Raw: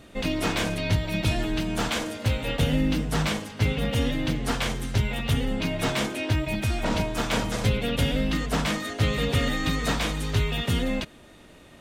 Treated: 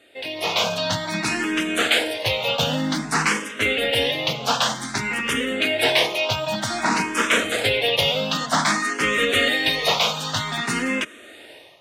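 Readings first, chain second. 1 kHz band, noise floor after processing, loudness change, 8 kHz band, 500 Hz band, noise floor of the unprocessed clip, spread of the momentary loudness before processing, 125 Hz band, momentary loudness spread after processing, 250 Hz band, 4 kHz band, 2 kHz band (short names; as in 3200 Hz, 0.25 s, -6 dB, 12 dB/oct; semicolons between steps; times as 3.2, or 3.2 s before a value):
+8.0 dB, -44 dBFS, +5.5 dB, +7.5 dB, +6.0 dB, -50 dBFS, 3 LU, -7.5 dB, 6 LU, -0.5 dB, +10.0 dB, +9.5 dB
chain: AGC gain up to 16.5 dB; weighting filter A; endless phaser +0.53 Hz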